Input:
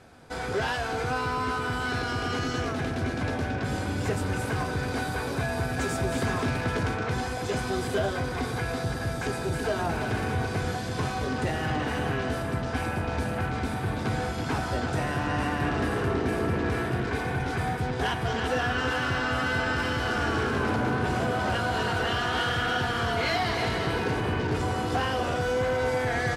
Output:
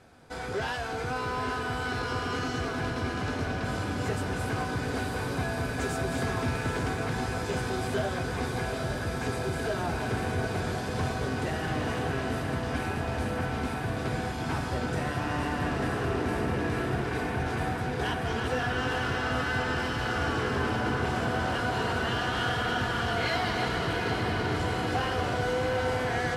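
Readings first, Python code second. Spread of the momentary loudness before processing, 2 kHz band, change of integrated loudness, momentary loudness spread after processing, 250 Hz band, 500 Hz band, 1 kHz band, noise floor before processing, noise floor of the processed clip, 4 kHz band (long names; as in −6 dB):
4 LU, −2.0 dB, −2.0 dB, 3 LU, −1.5 dB, −2.0 dB, −2.0 dB, −32 dBFS, −33 dBFS, −2.0 dB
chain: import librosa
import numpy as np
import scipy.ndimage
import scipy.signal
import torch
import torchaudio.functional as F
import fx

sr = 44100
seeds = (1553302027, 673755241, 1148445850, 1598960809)

y = fx.echo_diffused(x, sr, ms=837, feedback_pct=71, wet_db=-6.0)
y = F.gain(torch.from_numpy(y), -3.5).numpy()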